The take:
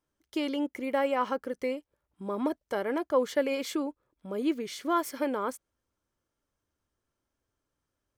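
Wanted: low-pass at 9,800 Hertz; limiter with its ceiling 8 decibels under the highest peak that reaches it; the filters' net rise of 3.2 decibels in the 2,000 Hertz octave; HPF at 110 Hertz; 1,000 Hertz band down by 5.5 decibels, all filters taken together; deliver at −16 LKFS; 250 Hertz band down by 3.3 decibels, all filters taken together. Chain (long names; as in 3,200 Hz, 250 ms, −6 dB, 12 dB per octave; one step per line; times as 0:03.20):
high-pass filter 110 Hz
low-pass filter 9,800 Hz
parametric band 250 Hz −3.5 dB
parametric band 1,000 Hz −8.5 dB
parametric band 2,000 Hz +6.5 dB
level +19.5 dB
brickwall limiter −5 dBFS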